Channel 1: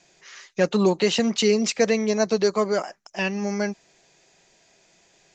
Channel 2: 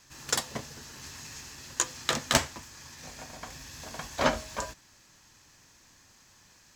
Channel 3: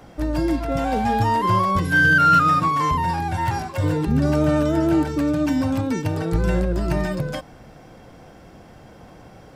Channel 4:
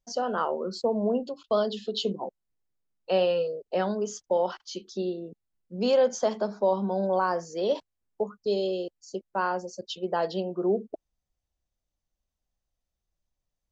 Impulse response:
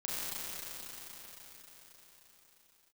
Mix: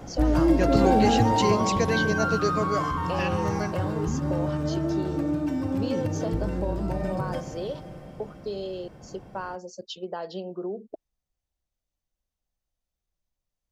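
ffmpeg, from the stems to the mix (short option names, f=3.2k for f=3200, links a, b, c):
-filter_complex "[0:a]volume=-6dB[a];[2:a]tiltshelf=f=830:g=4,acompressor=threshold=-18dB:ratio=6,volume=-0.5dB,afade=t=out:st=0.96:d=0.78:silence=0.375837,asplit=2[b][c];[c]volume=-7.5dB[d];[3:a]acompressor=threshold=-28dB:ratio=6,volume=-1.5dB[e];[4:a]atrim=start_sample=2205[f];[d][f]afir=irnorm=-1:irlink=0[g];[a][b][e][g]amix=inputs=4:normalize=0"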